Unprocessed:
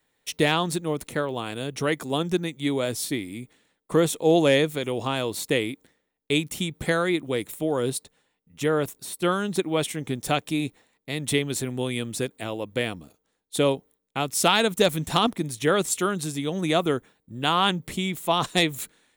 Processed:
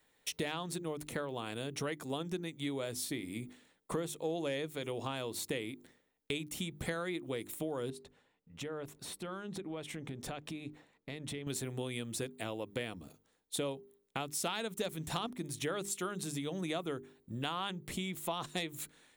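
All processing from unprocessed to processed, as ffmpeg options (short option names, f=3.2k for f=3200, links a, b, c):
-filter_complex "[0:a]asettb=1/sr,asplit=3[a][b][c];[a]atrim=end=7.904[d];[b]atrim=start=7.9:end=11.47,asetpts=PTS-STARTPTS,afade=t=in:d=0.004:c=qsin,afade=t=out:st=3.566:d=0.004:c=qsin,lowpass=f=2.6k:p=1,acompressor=threshold=-39dB:ratio=4:attack=3.2:release=140:knee=1:detection=peak[e];[c]atrim=start=11.466[f];[d][e]acrossfade=d=0.004:c1=hsin:c2=qsin[g];[g][f]acrossfade=d=0.004:c1=qsin:c2=hsin,bandreject=f=50:t=h:w=6,bandreject=f=100:t=h:w=6,bandreject=f=150:t=h:w=6,bandreject=f=200:t=h:w=6,bandreject=f=250:t=h:w=6,bandreject=f=300:t=h:w=6,bandreject=f=350:t=h:w=6,bandreject=f=400:t=h:w=6,acompressor=threshold=-37dB:ratio=4"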